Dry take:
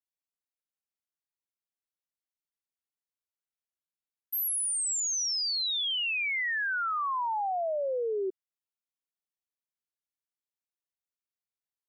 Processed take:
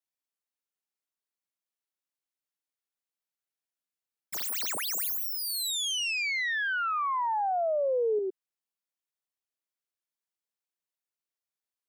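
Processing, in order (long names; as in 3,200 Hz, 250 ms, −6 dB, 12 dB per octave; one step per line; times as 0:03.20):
stylus tracing distortion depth 0.13 ms
high-pass filter 220 Hz 12 dB per octave
0:06.19–0:08.19: low-shelf EQ 490 Hz +7.5 dB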